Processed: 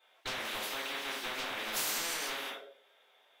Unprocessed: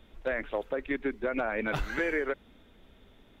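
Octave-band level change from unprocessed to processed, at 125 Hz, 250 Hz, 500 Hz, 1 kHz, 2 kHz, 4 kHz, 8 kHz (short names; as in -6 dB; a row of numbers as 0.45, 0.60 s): -15.0 dB, -14.5 dB, -13.0 dB, -2.0 dB, -4.5 dB, +13.5 dB, n/a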